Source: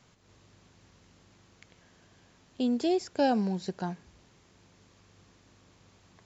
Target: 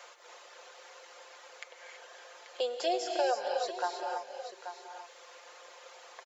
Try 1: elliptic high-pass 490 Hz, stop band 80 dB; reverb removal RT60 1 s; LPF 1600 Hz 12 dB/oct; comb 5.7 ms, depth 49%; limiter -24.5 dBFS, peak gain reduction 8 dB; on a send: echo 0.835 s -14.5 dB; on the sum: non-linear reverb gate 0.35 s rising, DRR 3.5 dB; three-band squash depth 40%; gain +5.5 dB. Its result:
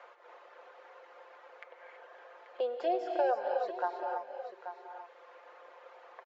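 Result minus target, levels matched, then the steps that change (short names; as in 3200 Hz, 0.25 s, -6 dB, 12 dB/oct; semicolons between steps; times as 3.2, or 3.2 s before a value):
2000 Hz band -3.0 dB
remove: LPF 1600 Hz 12 dB/oct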